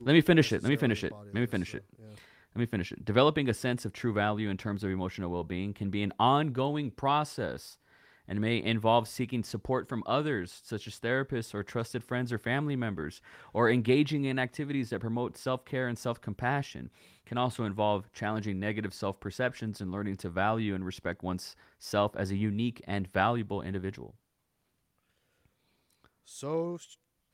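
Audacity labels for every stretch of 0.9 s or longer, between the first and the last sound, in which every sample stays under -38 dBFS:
24.090000	26.350000	silence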